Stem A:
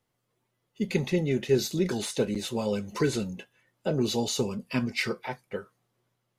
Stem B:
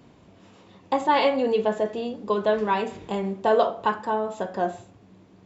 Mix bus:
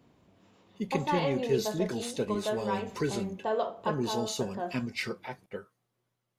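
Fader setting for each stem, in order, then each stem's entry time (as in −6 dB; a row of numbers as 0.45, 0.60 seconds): −5.0, −10.0 decibels; 0.00, 0.00 seconds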